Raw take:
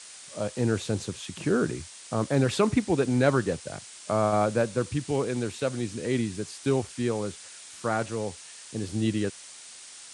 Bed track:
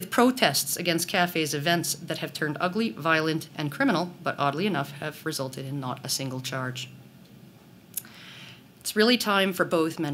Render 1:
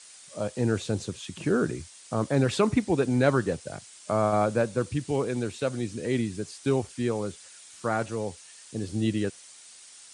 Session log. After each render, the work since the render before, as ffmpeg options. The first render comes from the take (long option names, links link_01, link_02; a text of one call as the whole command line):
ffmpeg -i in.wav -af "afftdn=noise_reduction=6:noise_floor=-46" out.wav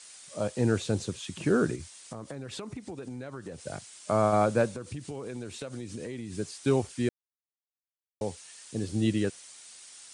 ffmpeg -i in.wav -filter_complex "[0:a]asplit=3[link_01][link_02][link_03];[link_01]afade=type=out:start_time=1.75:duration=0.02[link_04];[link_02]acompressor=threshold=-35dB:ratio=16:attack=3.2:release=140:knee=1:detection=peak,afade=type=in:start_time=1.75:duration=0.02,afade=type=out:start_time=3.66:duration=0.02[link_05];[link_03]afade=type=in:start_time=3.66:duration=0.02[link_06];[link_04][link_05][link_06]amix=inputs=3:normalize=0,asettb=1/sr,asplit=3[link_07][link_08][link_09];[link_07]atrim=end=4.704[link_10];[link_08]atrim=start=4.7:end=6.33,asetpts=PTS-STARTPTS,afade=type=in:duration=0.004:curve=qsin,afade=type=out:start_time=1.626:duration=0.004:curve=qsin,acompressor=threshold=-33dB:ratio=16:attack=3.2:release=140:knee=1:detection=peak[link_11];[link_09]atrim=start=6.326[link_12];[link_10][link_11]acrossfade=duration=0.004:curve1=hsin:curve2=qsin[link_13];[link_13][link_12]acrossfade=duration=0.004:curve1=qsin:curve2=hsin,asplit=3[link_14][link_15][link_16];[link_14]atrim=end=7.09,asetpts=PTS-STARTPTS,afade=type=out:start_time=7.086:duration=0.004:curve=hsin[link_17];[link_15]atrim=start=7.09:end=8.21,asetpts=PTS-STARTPTS,volume=0[link_18];[link_16]atrim=start=8.21,asetpts=PTS-STARTPTS,afade=type=in:duration=0.004:curve=hsin[link_19];[link_17][link_18][link_19]concat=n=3:v=0:a=1" out.wav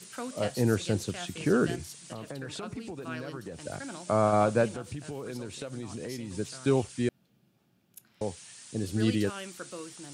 ffmpeg -i in.wav -i bed.wav -filter_complex "[1:a]volume=-18dB[link_01];[0:a][link_01]amix=inputs=2:normalize=0" out.wav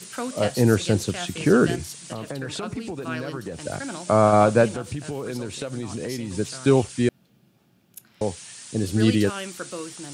ffmpeg -i in.wav -af "volume=7.5dB" out.wav